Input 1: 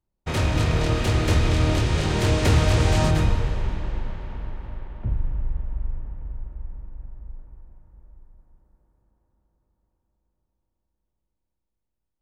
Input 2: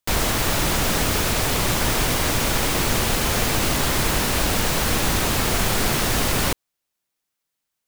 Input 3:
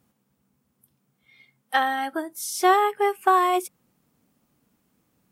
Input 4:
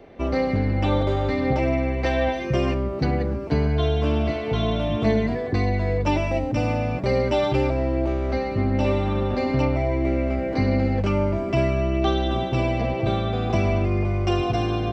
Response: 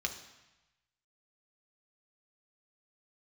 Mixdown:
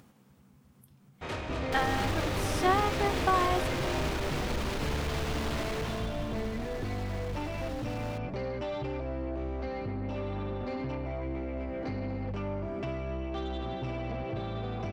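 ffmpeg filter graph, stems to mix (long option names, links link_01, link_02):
-filter_complex "[0:a]alimiter=limit=-13dB:level=0:latency=1:release=331,bass=frequency=250:gain=-10,treble=frequency=4000:gain=-4,adelay=950,volume=-7.5dB[link_01];[1:a]acrossover=split=5700[link_02][link_03];[link_03]acompressor=threshold=-32dB:ratio=4:attack=1:release=60[link_04];[link_02][link_04]amix=inputs=2:normalize=0,alimiter=limit=-17.5dB:level=0:latency=1:release=152,asoftclip=type=tanh:threshold=-28dB,adelay=1650,volume=-2.5dB,afade=type=out:start_time=5.63:duration=0.53:silence=0.316228[link_05];[2:a]asubboost=boost=7:cutoff=180,volume=-6.5dB[link_06];[3:a]acompressor=threshold=-24dB:ratio=4,asoftclip=type=tanh:threshold=-24.5dB,adelay=1300,volume=-5dB[link_07];[link_01][link_05][link_06][link_07]amix=inputs=4:normalize=0,highshelf=frequency=7300:gain=-9.5,acompressor=mode=upward:threshold=-45dB:ratio=2.5"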